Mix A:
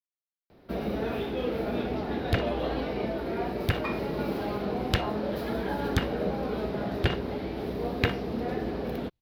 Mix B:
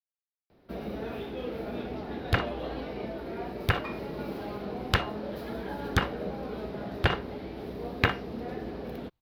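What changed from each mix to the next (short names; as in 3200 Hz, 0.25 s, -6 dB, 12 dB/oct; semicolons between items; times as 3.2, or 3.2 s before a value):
first sound -5.5 dB; second sound: add bell 1100 Hz +8.5 dB 1.4 oct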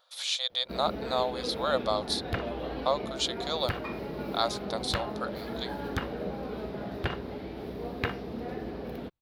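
speech: unmuted; second sound -7.5 dB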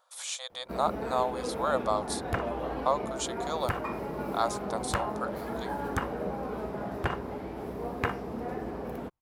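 speech -3.0 dB; master: add ten-band EQ 1000 Hz +7 dB, 4000 Hz -11 dB, 8000 Hz +11 dB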